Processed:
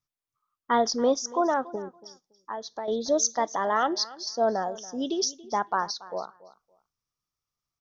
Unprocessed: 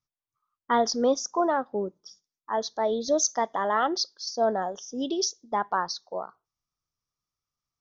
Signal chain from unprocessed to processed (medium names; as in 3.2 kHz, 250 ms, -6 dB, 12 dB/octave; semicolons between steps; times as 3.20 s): 1.75–2.88 s: compression 12:1, threshold -31 dBFS, peak gain reduction 11 dB; feedback delay 282 ms, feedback 19%, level -19 dB